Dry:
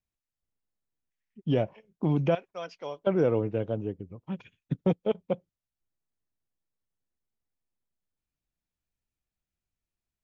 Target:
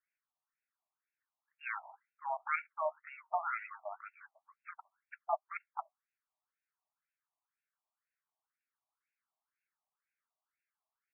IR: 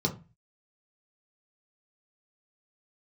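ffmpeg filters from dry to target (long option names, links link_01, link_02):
-af "asetrate=40517,aresample=44100,afftfilt=real='re*between(b*sr/1024,840*pow(2000/840,0.5+0.5*sin(2*PI*2*pts/sr))/1.41,840*pow(2000/840,0.5+0.5*sin(2*PI*2*pts/sr))*1.41)':imag='im*between(b*sr/1024,840*pow(2000/840,0.5+0.5*sin(2*PI*2*pts/sr))/1.41,840*pow(2000/840,0.5+0.5*sin(2*PI*2*pts/sr))*1.41)':win_size=1024:overlap=0.75,volume=8.5dB"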